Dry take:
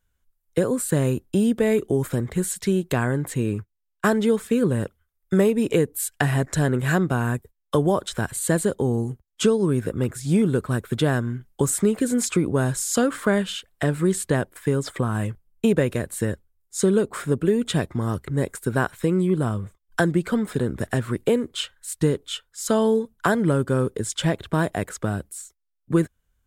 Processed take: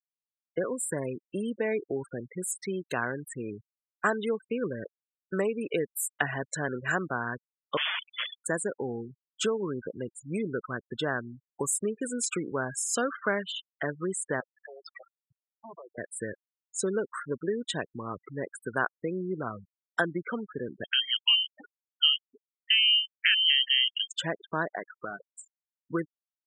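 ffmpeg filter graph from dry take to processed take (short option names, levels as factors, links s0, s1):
-filter_complex "[0:a]asettb=1/sr,asplit=3[s0][s1][s2];[s0]atrim=end=7.774[s3];[s1]atrim=start=7.77:end=8.46,asetpts=PTS-STARTPTS,afade=t=in:d=0.004:c=qsin,afade=t=out:st=0.686:d=0.004:c=qsin,equalizer=f=200:w=6.8:g=-5,aeval=exprs='(mod(10.6*val(0)+1,2)-1)/10.6':c=same,lowpass=f=3000:t=q:w=0.5098,lowpass=f=3000:t=q:w=0.6013,lowpass=f=3000:t=q:w=0.9,lowpass=f=3000:t=q:w=2.563,afreqshift=-3500[s4];[s2]atrim=start=8.456[s5];[s3][s4]acrossfade=d=0.004:c1=hsin:c2=qsin[s6];[s6][s5]acrossfade=d=0.004:c1=qsin:c2=hsin,asettb=1/sr,asplit=3[s7][s8][s9];[s7]atrim=end=14.404[s10];[s8]atrim=start=14.4:end=15.98,asetpts=PTS-STARTPTS,afade=t=in:d=0.004:c=qsin,afade=t=out:st=1.576:d=0.004:c=qsin,highpass=f=53:w=0.5412,highpass=f=53:w=1.3066,acompressor=threshold=0.0178:ratio=2:attack=3.2:release=140:knee=1:detection=peak,aeval=exprs='0.0355*(abs(mod(val(0)/0.0355+3,4)-2)-1)':c=same[s11];[s9]atrim=start=15.976[s12];[s10][s11]acrossfade=d=0.004:c1=hsin:c2=qsin[s13];[s13][s12]acrossfade=d=0.004:c1=qsin:c2=hsin,asettb=1/sr,asplit=3[s14][s15][s16];[s14]atrim=end=20.844[s17];[s15]atrim=start=20.84:end=24.11,asetpts=PTS-STARTPTS,afade=t=in:d=0.004:c=qsin,afade=t=out:st=3.266:d=0.004:c=qsin,lowpass=f=2800:t=q:w=0.5098,lowpass=f=2800:t=q:w=0.6013,lowpass=f=2800:t=q:w=0.9,lowpass=f=2800:t=q:w=2.563,afreqshift=-3300,asubboost=boost=10:cutoff=88[s18];[s16]atrim=start=24.106[s19];[s17][s18]acrossfade=d=0.004:c1=hsin:c2=qsin[s20];[s20][s19]acrossfade=d=0.004:c1=qsin:c2=hsin,asettb=1/sr,asplit=3[s21][s22][s23];[s21]atrim=end=24.764[s24];[s22]atrim=start=24.76:end=25.38,asetpts=PTS-STARTPTS,afade=t=in:d=0.004:c=qsin,afade=t=out:st=0.616:d=0.004:c=qsin,lowpass=f=2300:w=0.5412,lowpass=f=2300:w=1.3066,lowshelf=f=360:g=-7.5,acrusher=bits=2:mode=log:mix=0:aa=0.000001[s25];[s23]atrim=start=25.376[s26];[s24][s25]acrossfade=d=0.004:c1=hsin:c2=qsin[s27];[s27][s26]acrossfade=d=0.004:c1=qsin:c2=hsin,highpass=f=660:p=1,afftfilt=real='re*gte(hypot(re,im),0.0398)':imag='im*gte(hypot(re,im),0.0398)':win_size=1024:overlap=0.75,equalizer=f=1400:w=2.1:g=3,volume=0.668"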